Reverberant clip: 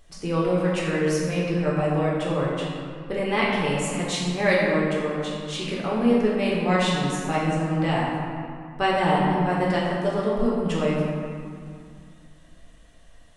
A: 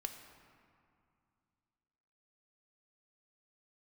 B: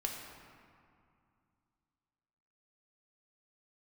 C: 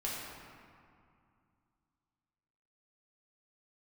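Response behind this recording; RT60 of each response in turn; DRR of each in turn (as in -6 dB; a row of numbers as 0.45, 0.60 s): C; 2.4, 2.3, 2.3 s; 5.5, 0.5, -6.0 dB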